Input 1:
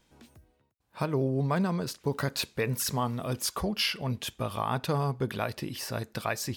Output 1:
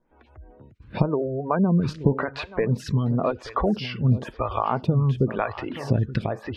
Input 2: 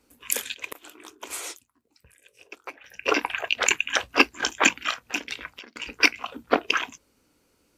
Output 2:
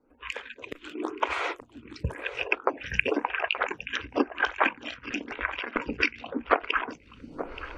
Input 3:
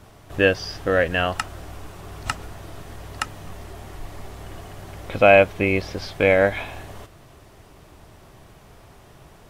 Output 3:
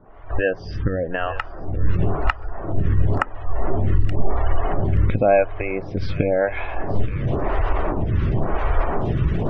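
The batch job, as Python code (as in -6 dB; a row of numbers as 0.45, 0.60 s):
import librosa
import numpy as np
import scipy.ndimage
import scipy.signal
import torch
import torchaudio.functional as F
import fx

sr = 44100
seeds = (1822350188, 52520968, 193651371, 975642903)

p1 = fx.recorder_agc(x, sr, target_db=-9.5, rise_db_per_s=40.0, max_gain_db=30)
p2 = fx.spec_gate(p1, sr, threshold_db=-25, keep='strong')
p3 = scipy.signal.sosfilt(scipy.signal.butter(2, 2200.0, 'lowpass', fs=sr, output='sos'), p2)
p4 = fx.low_shelf(p3, sr, hz=68.0, db=11.5)
p5 = fx.vibrato(p4, sr, rate_hz=9.4, depth_cents=12.0)
p6 = p5 + fx.echo_feedback(p5, sr, ms=876, feedback_pct=18, wet_db=-14, dry=0)
p7 = fx.stagger_phaser(p6, sr, hz=0.95)
y = F.gain(torch.from_numpy(p7), -1.5).numpy()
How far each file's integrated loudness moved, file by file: +6.0, -5.0, -3.0 LU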